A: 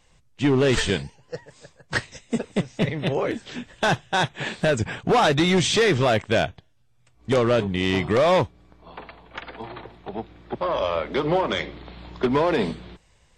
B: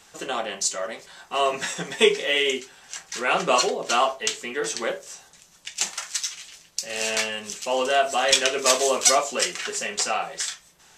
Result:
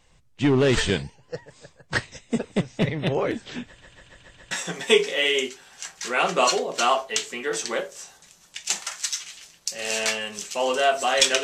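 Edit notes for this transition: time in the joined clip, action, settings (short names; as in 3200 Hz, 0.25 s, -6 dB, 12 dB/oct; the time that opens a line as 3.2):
A
3.67 stutter in place 0.14 s, 6 plays
4.51 switch to B from 1.62 s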